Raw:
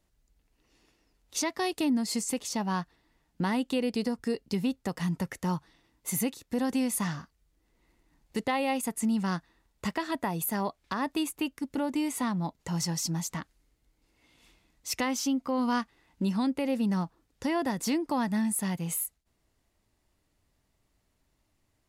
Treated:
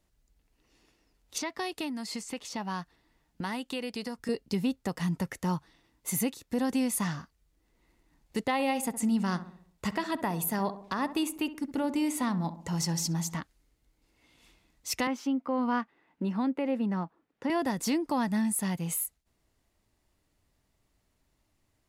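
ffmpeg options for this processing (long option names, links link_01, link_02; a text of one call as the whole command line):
ffmpeg -i in.wav -filter_complex "[0:a]asettb=1/sr,asplit=3[link_01][link_02][link_03];[link_01]atrim=end=1.384[link_04];[link_02]atrim=start=1.38:end=4.29,asetpts=PTS-STARTPTS,afade=type=in:duration=0.004:curve=qsin,afade=type=out:start_time=2.906:duration=0.004:curve=qsin,acrossover=split=760|4500[link_05][link_06][link_07];[link_05]acompressor=threshold=-36dB:ratio=4[link_08];[link_06]acompressor=threshold=-34dB:ratio=4[link_09];[link_07]acompressor=threshold=-47dB:ratio=4[link_10];[link_08][link_09][link_10]amix=inputs=3:normalize=0[link_11];[link_03]atrim=start=4.286[link_12];[link_04][link_11]acrossfade=duration=0.004:curve1=hsin:curve2=qsin[link_13];[link_13][link_12]acrossfade=duration=0.004:curve1=qsin:curve2=hsin,asettb=1/sr,asplit=3[link_14][link_15][link_16];[link_14]atrim=end=8.534[link_17];[link_15]atrim=start=8.53:end=13.4,asetpts=PTS-STARTPTS,afade=type=in:duration=0.004:curve=qsin,afade=type=out:start_time=4.866:duration=0.004:curve=qsin,asplit=2[link_18][link_19];[link_19]adelay=66,lowpass=frequency=1400:poles=1,volume=-12dB,asplit=2[link_20][link_21];[link_21]adelay=66,lowpass=frequency=1400:poles=1,volume=0.54,asplit=2[link_22][link_23];[link_23]adelay=66,lowpass=frequency=1400:poles=1,volume=0.54,asplit=2[link_24][link_25];[link_25]adelay=66,lowpass=frequency=1400:poles=1,volume=0.54,asplit=2[link_26][link_27];[link_27]adelay=66,lowpass=frequency=1400:poles=1,volume=0.54,asplit=2[link_28][link_29];[link_29]adelay=66,lowpass=frequency=1400:poles=1,volume=0.54[link_30];[link_18][link_20][link_22][link_24][link_26][link_28][link_30]amix=inputs=7:normalize=0,atrim=end_sample=214767[link_31];[link_16]atrim=start=13.396[link_32];[link_17][link_31]acrossfade=duration=0.004:curve1=hsin:curve2=qsin[link_33];[link_33][link_32]acrossfade=duration=0.004:curve1=qsin:curve2=hsin,asettb=1/sr,asplit=3[link_34][link_35][link_36];[link_34]atrim=end=15.074[link_37];[link_35]atrim=start=15.07:end=17.5,asetpts=PTS-STARTPTS,afade=type=in:duration=0.004:curve=qsin,afade=type=out:start_time=2.426:duration=0.004:curve=qsin,acrossover=split=160 2800:gain=0.0631 1 0.141[link_38][link_39][link_40];[link_38][link_39][link_40]amix=inputs=3:normalize=0[link_41];[link_36]atrim=start=17.496[link_42];[link_37][link_41]acrossfade=duration=0.004:curve1=hsin:curve2=qsin[link_43];[link_43][link_42]acrossfade=duration=0.004:curve1=qsin:curve2=hsin" out.wav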